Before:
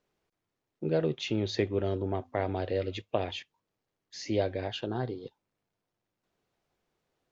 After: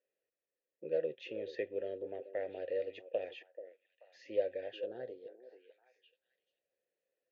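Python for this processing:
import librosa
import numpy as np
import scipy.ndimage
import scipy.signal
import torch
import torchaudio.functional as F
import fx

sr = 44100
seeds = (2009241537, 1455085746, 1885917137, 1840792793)

y = fx.vowel_filter(x, sr, vowel='e')
y = fx.echo_stepped(y, sr, ms=434, hz=420.0, octaves=1.4, feedback_pct=70, wet_db=-11.0)
y = y * 10.0 ** (1.0 / 20.0)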